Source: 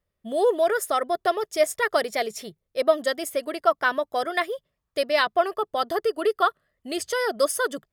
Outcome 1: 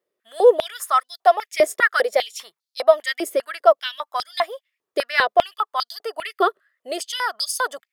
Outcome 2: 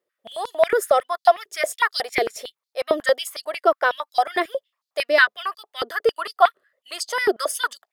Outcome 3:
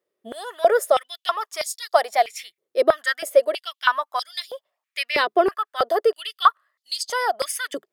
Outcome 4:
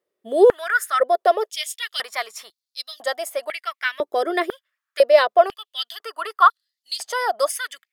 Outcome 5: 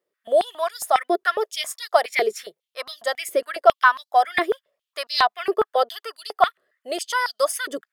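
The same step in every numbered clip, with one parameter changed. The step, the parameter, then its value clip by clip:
stepped high-pass, rate: 5, 11, 3.1, 2, 7.3 Hz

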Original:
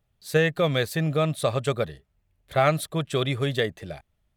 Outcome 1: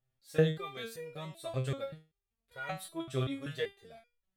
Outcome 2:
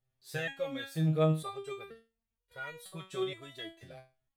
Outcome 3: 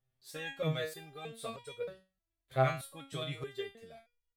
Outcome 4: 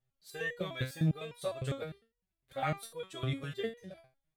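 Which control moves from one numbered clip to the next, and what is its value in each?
stepped resonator, rate: 5.2, 2.1, 3.2, 9.9 Hz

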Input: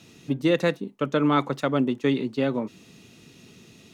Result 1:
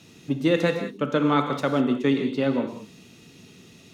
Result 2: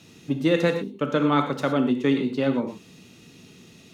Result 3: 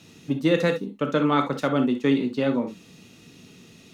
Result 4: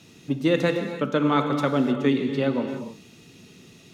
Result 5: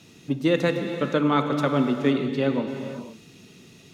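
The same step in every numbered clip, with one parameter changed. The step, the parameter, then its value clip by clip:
non-linear reverb, gate: 220, 140, 90, 330, 530 ms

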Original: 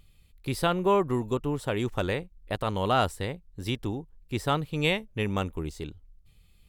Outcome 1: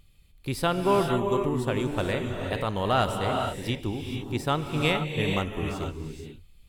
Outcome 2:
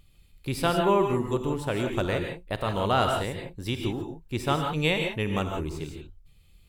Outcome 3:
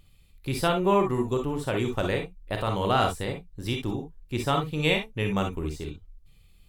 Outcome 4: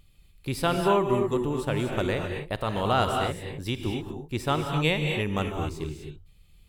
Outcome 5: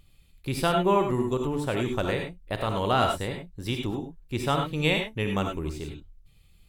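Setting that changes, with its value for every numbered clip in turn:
non-linear reverb, gate: 500, 190, 80, 280, 120 ms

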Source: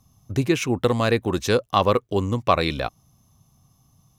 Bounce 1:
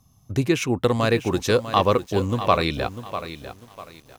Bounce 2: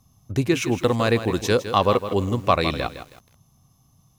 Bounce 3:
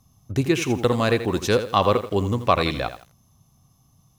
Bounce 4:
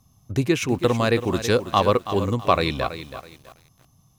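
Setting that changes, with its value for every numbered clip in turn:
lo-fi delay, time: 647, 160, 83, 327 ms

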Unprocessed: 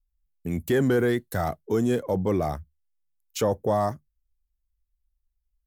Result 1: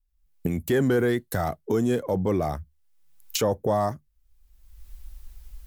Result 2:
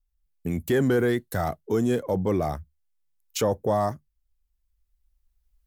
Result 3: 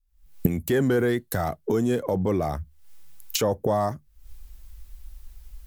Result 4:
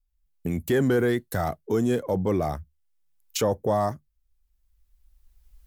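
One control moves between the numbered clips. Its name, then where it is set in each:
recorder AGC, rising by: 33, 5.2, 82, 13 dB/s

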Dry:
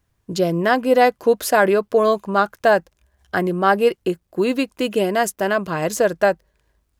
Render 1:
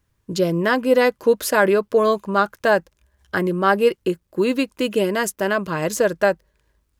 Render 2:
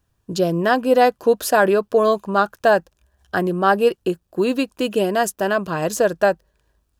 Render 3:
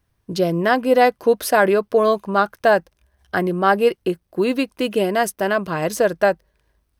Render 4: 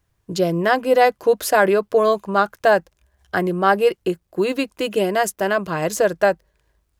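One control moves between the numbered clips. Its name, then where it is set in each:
notch, frequency: 720, 2100, 7100, 240 Hz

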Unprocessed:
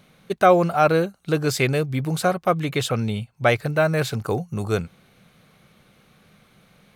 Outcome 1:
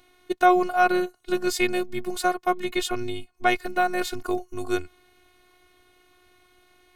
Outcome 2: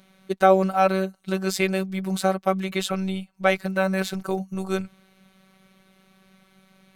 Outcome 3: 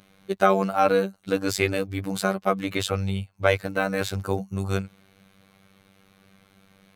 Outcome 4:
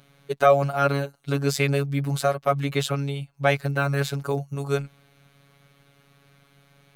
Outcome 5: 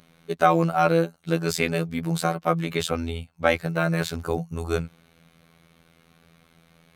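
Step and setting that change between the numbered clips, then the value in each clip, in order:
robotiser, frequency: 360, 190, 97, 140, 83 Hz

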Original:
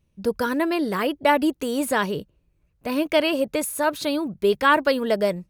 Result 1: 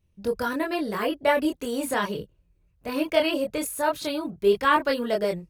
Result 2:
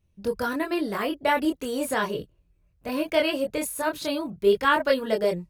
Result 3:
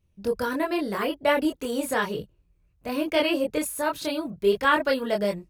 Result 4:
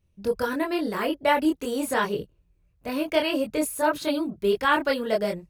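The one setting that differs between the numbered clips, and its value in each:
chorus, rate: 0.7, 0.35, 1.3, 2.1 Hz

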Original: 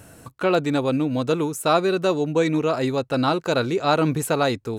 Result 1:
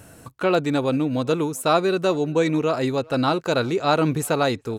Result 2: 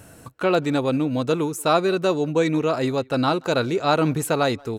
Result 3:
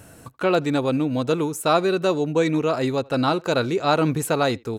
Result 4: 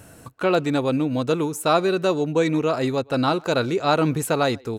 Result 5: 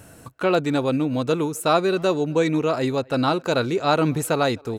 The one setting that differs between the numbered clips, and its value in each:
speakerphone echo, time: 390, 180, 80, 120, 260 ms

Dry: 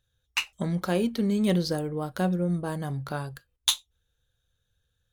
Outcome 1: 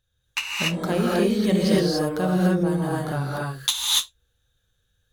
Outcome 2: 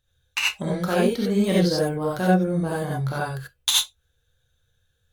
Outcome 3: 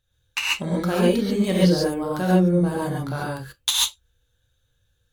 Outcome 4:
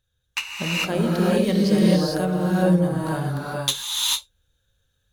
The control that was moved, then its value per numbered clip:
non-linear reverb, gate: 0.31, 0.11, 0.16, 0.47 s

